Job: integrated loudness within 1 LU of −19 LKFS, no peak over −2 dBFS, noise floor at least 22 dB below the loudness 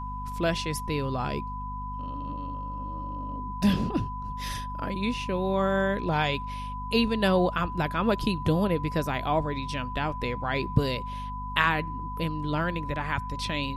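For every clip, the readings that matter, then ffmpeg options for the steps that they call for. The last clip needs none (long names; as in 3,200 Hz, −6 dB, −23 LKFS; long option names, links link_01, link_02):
mains hum 50 Hz; hum harmonics up to 250 Hz; level of the hum −35 dBFS; interfering tone 1,000 Hz; level of the tone −35 dBFS; integrated loudness −28.5 LKFS; sample peak −7.5 dBFS; target loudness −19.0 LKFS
→ -af "bandreject=frequency=50:width_type=h:width=6,bandreject=frequency=100:width_type=h:width=6,bandreject=frequency=150:width_type=h:width=6,bandreject=frequency=200:width_type=h:width=6,bandreject=frequency=250:width_type=h:width=6"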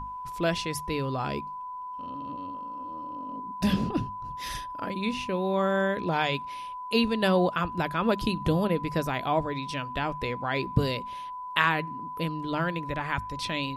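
mains hum none found; interfering tone 1,000 Hz; level of the tone −35 dBFS
→ -af "bandreject=frequency=1000:width=30"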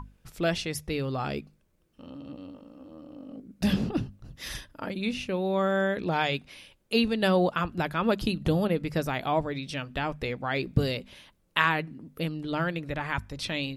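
interfering tone none found; integrated loudness −29.0 LKFS; sample peak −7.0 dBFS; target loudness −19.0 LKFS
→ -af "volume=10dB,alimiter=limit=-2dB:level=0:latency=1"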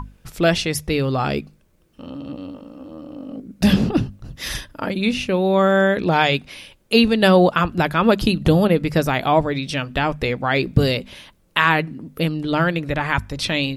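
integrated loudness −19.0 LKFS; sample peak −2.0 dBFS; background noise floor −58 dBFS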